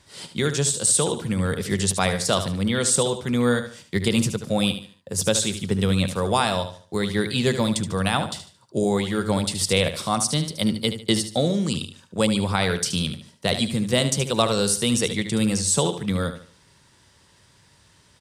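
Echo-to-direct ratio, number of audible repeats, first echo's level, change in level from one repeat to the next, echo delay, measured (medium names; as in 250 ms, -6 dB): -9.5 dB, 3, -10.0 dB, -9.5 dB, 74 ms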